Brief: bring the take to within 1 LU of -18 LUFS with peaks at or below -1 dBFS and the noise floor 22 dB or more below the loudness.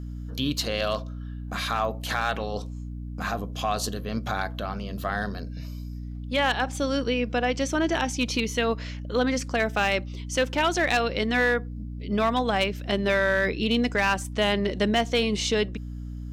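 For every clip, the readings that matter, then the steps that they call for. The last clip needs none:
clipped 0.4%; flat tops at -15.0 dBFS; hum 60 Hz; harmonics up to 300 Hz; hum level -33 dBFS; loudness -26.0 LUFS; peak -15.0 dBFS; loudness target -18.0 LUFS
-> clip repair -15 dBFS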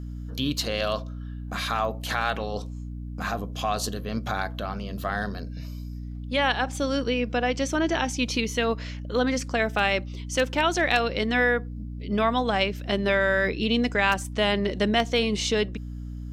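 clipped 0.0%; hum 60 Hz; harmonics up to 300 Hz; hum level -33 dBFS
-> de-hum 60 Hz, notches 5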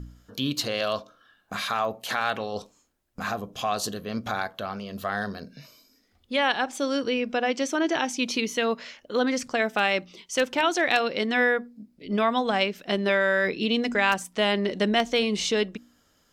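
hum none; loudness -26.0 LUFS; peak -7.0 dBFS; loudness target -18.0 LUFS
-> gain +8 dB; limiter -1 dBFS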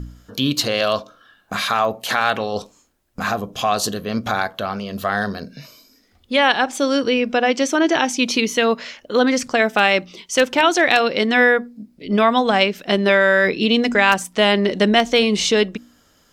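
loudness -18.0 LUFS; peak -1.0 dBFS; noise floor -58 dBFS

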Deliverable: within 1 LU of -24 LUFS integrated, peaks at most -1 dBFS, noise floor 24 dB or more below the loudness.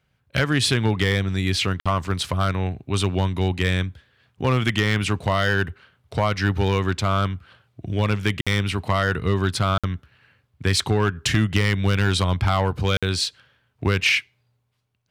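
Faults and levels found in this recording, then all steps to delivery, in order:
clipped 0.5%; flat tops at -11.0 dBFS; dropouts 4; longest dropout 56 ms; loudness -22.5 LUFS; peak -11.0 dBFS; loudness target -24.0 LUFS
-> clip repair -11 dBFS; interpolate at 1.8/8.41/9.78/12.97, 56 ms; gain -1.5 dB

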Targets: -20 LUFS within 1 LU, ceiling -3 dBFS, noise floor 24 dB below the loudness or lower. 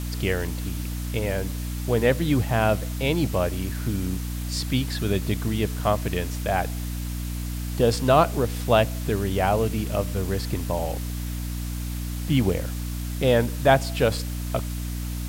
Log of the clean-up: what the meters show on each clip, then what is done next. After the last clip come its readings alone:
hum 60 Hz; harmonics up to 300 Hz; hum level -27 dBFS; noise floor -30 dBFS; noise floor target -49 dBFS; loudness -25.0 LUFS; peak -5.5 dBFS; loudness target -20.0 LUFS
-> notches 60/120/180/240/300 Hz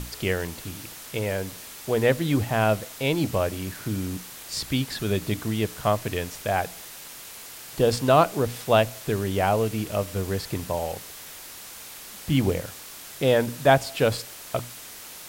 hum none; noise floor -42 dBFS; noise floor target -50 dBFS
-> denoiser 8 dB, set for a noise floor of -42 dBFS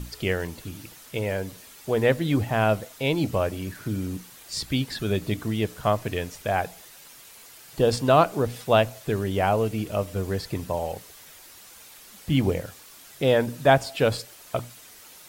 noise floor -48 dBFS; noise floor target -50 dBFS
-> denoiser 6 dB, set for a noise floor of -48 dBFS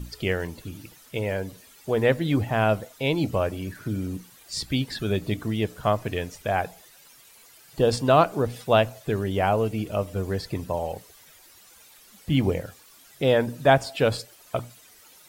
noise floor -53 dBFS; loudness -25.5 LUFS; peak -5.5 dBFS; loudness target -20.0 LUFS
-> gain +5.5 dB; limiter -3 dBFS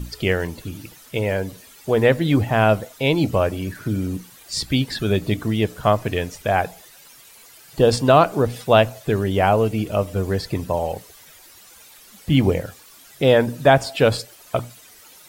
loudness -20.5 LUFS; peak -3.0 dBFS; noise floor -47 dBFS

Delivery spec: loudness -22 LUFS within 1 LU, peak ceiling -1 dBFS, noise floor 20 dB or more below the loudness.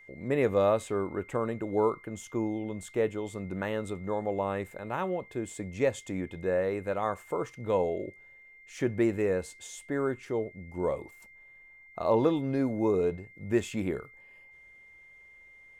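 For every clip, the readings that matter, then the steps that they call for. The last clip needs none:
steady tone 2100 Hz; tone level -52 dBFS; loudness -31.0 LUFS; peak -13.5 dBFS; loudness target -22.0 LUFS
-> notch 2100 Hz, Q 30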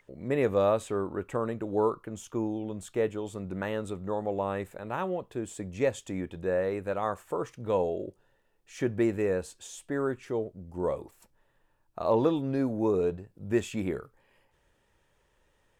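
steady tone none; loudness -31.0 LUFS; peak -13.5 dBFS; loudness target -22.0 LUFS
-> gain +9 dB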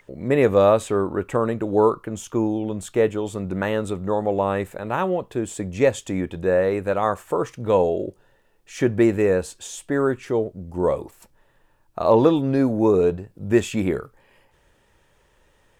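loudness -22.0 LUFS; peak -4.5 dBFS; noise floor -61 dBFS

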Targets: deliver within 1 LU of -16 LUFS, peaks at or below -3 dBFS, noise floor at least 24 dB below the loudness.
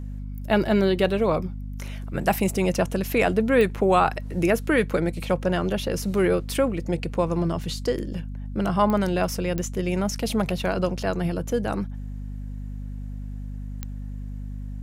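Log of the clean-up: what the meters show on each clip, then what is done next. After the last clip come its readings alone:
clicks 4; hum 50 Hz; harmonics up to 250 Hz; hum level -31 dBFS; loudness -24.0 LUFS; peak -7.5 dBFS; loudness target -16.0 LUFS
-> de-click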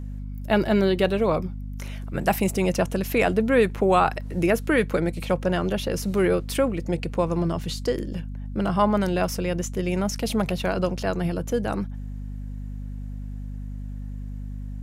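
clicks 0; hum 50 Hz; harmonics up to 250 Hz; hum level -31 dBFS
-> de-hum 50 Hz, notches 5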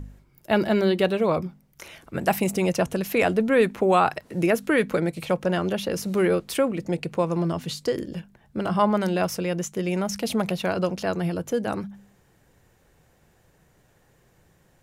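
hum none; loudness -24.5 LUFS; peak -7.0 dBFS; loudness target -16.0 LUFS
-> gain +8.5 dB; limiter -3 dBFS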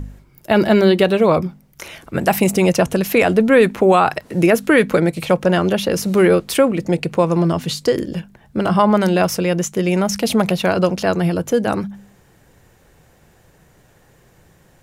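loudness -16.5 LUFS; peak -3.0 dBFS; noise floor -53 dBFS

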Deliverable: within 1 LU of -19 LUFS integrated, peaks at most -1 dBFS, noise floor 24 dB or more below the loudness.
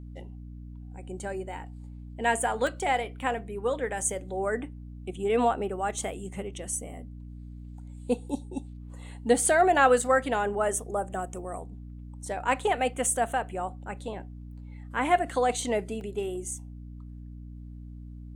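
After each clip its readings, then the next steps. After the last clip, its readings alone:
dropouts 2; longest dropout 1.3 ms; hum 60 Hz; harmonics up to 300 Hz; hum level -40 dBFS; loudness -28.5 LUFS; peak -9.0 dBFS; loudness target -19.0 LUFS
-> interpolate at 2.67/16.01, 1.3 ms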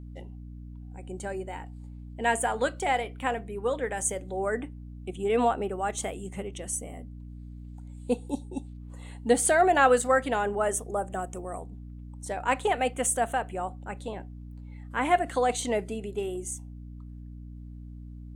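dropouts 0; hum 60 Hz; harmonics up to 300 Hz; hum level -40 dBFS
-> notches 60/120/180/240/300 Hz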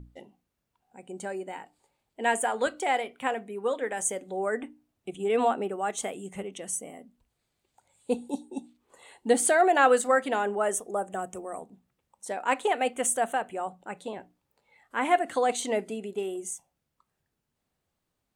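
hum none; loudness -28.0 LUFS; peak -9.0 dBFS; loudness target -19.0 LUFS
-> gain +9 dB; limiter -1 dBFS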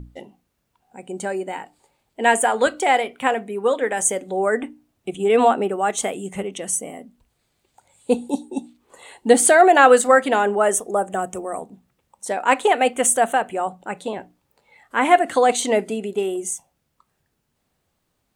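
loudness -19.5 LUFS; peak -1.0 dBFS; noise floor -73 dBFS

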